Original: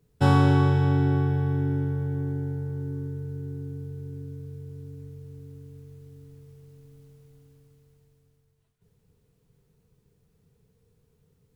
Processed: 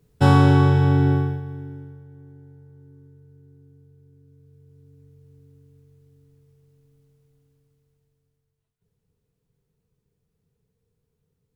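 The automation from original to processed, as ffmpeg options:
-af "volume=12.5dB,afade=t=out:st=1.11:d=0.3:silence=0.266073,afade=t=out:st=1.41:d=0.63:silence=0.334965,afade=t=in:st=4.22:d=1.11:silence=0.398107"

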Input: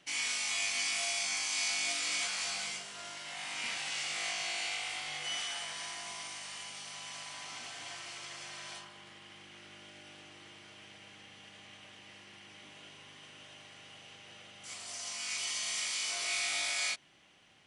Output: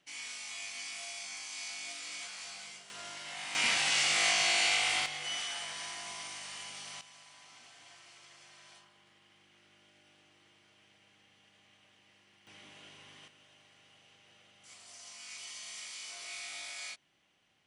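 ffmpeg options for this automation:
-af "asetnsamples=n=441:p=0,asendcmd='2.9 volume volume 0dB;3.55 volume volume 8.5dB;5.06 volume volume 0dB;7.01 volume volume -11.5dB;12.47 volume volume -1.5dB;13.28 volume volume -9.5dB',volume=-9dB"

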